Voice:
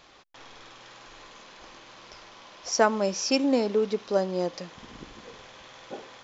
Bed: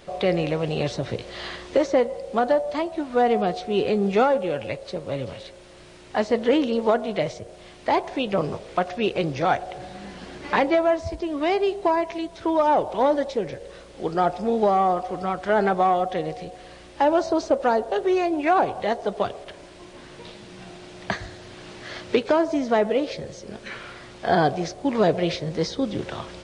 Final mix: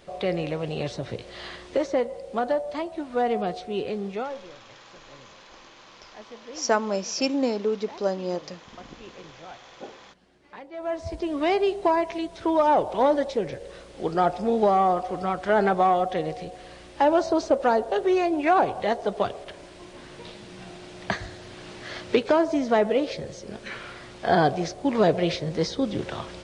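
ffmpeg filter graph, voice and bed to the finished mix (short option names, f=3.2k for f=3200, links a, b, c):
-filter_complex "[0:a]adelay=3900,volume=-1dB[a];[1:a]volume=17.5dB,afade=t=out:st=3.57:d=0.96:silence=0.125893,afade=t=in:st=10.73:d=0.49:silence=0.0794328[b];[a][b]amix=inputs=2:normalize=0"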